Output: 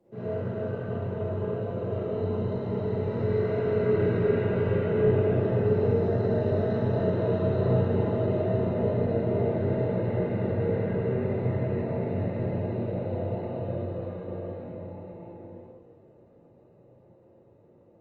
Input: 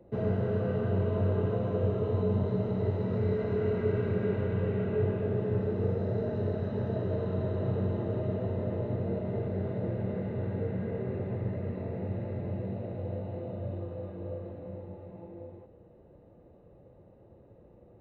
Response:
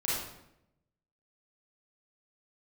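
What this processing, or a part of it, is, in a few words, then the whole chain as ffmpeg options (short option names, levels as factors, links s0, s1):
far-field microphone of a smart speaker: -filter_complex "[0:a]lowshelf=f=99:g=-5[s0];[1:a]atrim=start_sample=2205[s1];[s0][s1]afir=irnorm=-1:irlink=0,highpass=110,dynaudnorm=f=530:g=13:m=2.51,volume=0.447" -ar 48000 -c:a libopus -b:a 24k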